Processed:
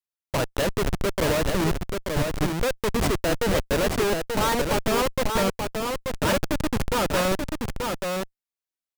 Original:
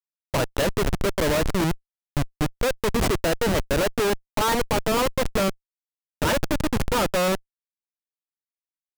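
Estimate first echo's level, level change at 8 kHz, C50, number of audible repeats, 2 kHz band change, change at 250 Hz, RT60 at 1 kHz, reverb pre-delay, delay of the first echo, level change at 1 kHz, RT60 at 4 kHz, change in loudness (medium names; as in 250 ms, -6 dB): -4.5 dB, 0.0 dB, no reverb, 1, 0.0 dB, 0.0 dB, no reverb, no reverb, 883 ms, 0.0 dB, no reverb, -1.0 dB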